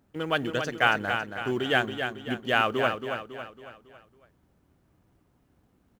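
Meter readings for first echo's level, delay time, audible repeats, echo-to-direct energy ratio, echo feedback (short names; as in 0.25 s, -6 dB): -7.0 dB, 0.276 s, 5, -6.0 dB, 46%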